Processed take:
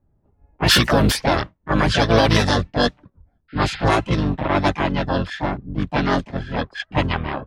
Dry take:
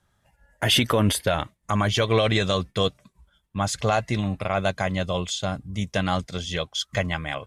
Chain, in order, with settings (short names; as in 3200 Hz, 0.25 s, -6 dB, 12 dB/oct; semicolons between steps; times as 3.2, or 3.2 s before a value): harmoniser -12 st -1 dB, +4 st -5 dB, +7 st -2 dB; painted sound noise, 3.48–3.85, 1300–5200 Hz -31 dBFS; low-pass opened by the level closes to 470 Hz, open at -12.5 dBFS; gain +1 dB